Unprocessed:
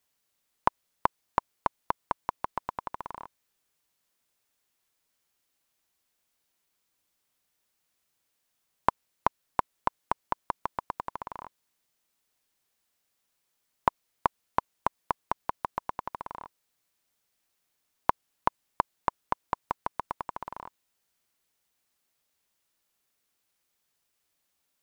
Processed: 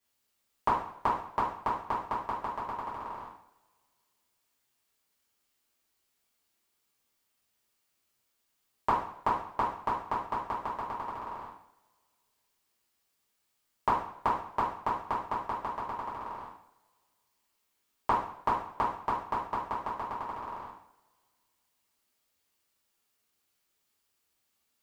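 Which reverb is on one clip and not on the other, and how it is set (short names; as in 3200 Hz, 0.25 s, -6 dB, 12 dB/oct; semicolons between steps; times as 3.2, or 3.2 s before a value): two-slope reverb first 0.58 s, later 2.2 s, from -26 dB, DRR -9.5 dB; gain -9.5 dB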